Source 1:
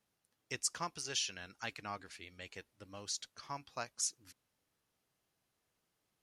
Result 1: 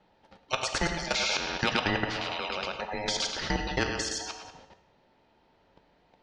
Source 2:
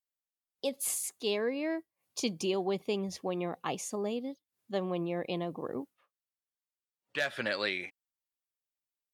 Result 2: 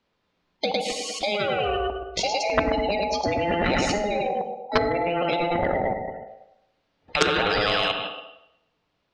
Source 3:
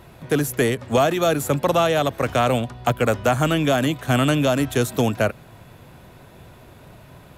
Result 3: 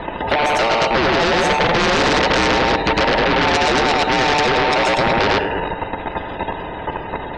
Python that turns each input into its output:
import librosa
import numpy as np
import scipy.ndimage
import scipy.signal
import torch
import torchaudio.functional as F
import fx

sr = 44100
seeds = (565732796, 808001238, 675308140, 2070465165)

p1 = fx.band_invert(x, sr, width_hz=1000)
p2 = p1 + fx.echo_feedback(p1, sr, ms=106, feedback_pct=31, wet_db=-4, dry=0)
p3 = fx.rider(p2, sr, range_db=4, speed_s=2.0)
p4 = fx.spec_gate(p3, sr, threshold_db=-25, keep='strong')
p5 = fx.level_steps(p4, sr, step_db=14)
p6 = scipy.signal.sosfilt(scipy.signal.butter(4, 4300.0, 'lowpass', fs=sr, output='sos'), p5)
p7 = fx.low_shelf(p6, sr, hz=340.0, db=11.5)
p8 = fx.rev_fdn(p7, sr, rt60_s=0.82, lf_ratio=0.9, hf_ratio=0.95, size_ms=33.0, drr_db=9.0)
p9 = fx.fold_sine(p8, sr, drive_db=10, ceiling_db=-11.5)
p10 = fx.peak_eq(p9, sr, hz=560.0, db=5.0, octaves=2.3)
p11 = fx.comb_fb(p10, sr, f0_hz=220.0, decay_s=0.47, harmonics='all', damping=0.0, mix_pct=40)
p12 = fx.spectral_comp(p11, sr, ratio=2.0)
y = p12 * 10.0 ** (3.5 / 20.0)